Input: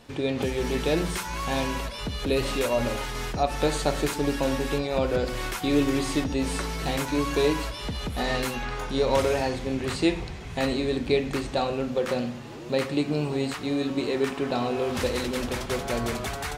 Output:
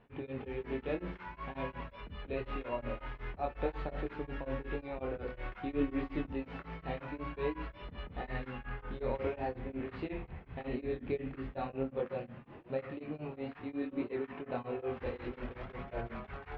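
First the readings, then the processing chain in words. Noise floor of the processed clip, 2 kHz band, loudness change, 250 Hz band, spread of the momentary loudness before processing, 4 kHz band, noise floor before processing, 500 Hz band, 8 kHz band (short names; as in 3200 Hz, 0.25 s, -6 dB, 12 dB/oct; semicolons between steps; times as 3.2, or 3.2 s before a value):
-56 dBFS, -13.5 dB, -12.5 dB, -12.5 dB, 6 LU, -23.5 dB, -37 dBFS, -12.0 dB, under -40 dB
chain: LPF 2500 Hz 24 dB/oct; chorus voices 2, 0.25 Hz, delay 24 ms, depth 1.8 ms; beating tremolo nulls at 5.5 Hz; gain -6 dB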